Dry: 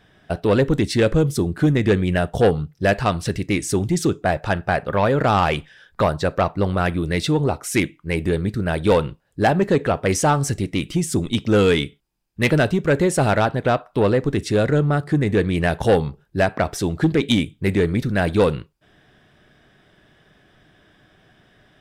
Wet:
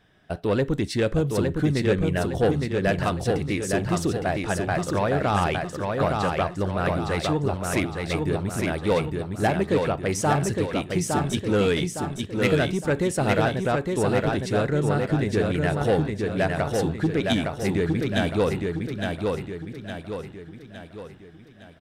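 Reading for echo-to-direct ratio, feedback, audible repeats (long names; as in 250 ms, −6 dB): −2.5 dB, 47%, 5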